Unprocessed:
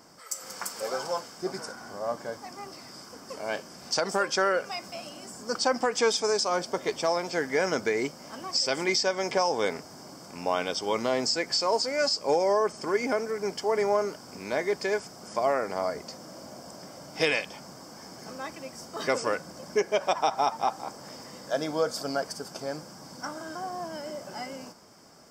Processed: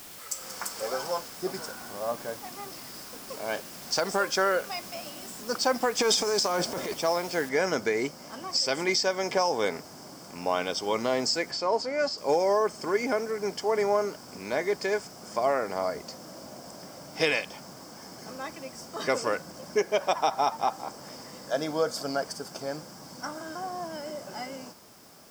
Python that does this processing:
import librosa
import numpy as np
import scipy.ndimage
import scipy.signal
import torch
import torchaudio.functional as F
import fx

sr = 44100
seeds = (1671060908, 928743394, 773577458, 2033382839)

y = fx.transient(x, sr, attack_db=-10, sustain_db=8, at=(5.99, 6.94))
y = fx.noise_floor_step(y, sr, seeds[0], at_s=7.49, before_db=-46, after_db=-58, tilt_db=0.0)
y = fx.lowpass(y, sr, hz=2400.0, slope=6, at=(11.51, 12.18))